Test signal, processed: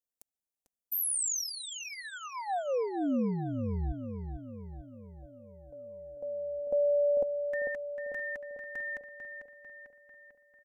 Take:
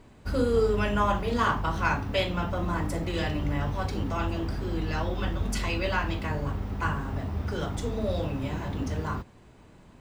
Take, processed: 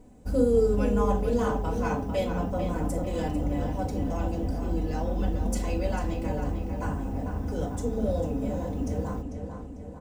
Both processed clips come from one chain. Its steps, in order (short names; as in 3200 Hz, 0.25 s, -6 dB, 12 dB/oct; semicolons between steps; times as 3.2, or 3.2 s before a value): band shelf 2200 Hz -12.5 dB 2.5 oct; comb 4 ms, depth 52%; darkening echo 0.446 s, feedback 56%, low-pass 4500 Hz, level -7 dB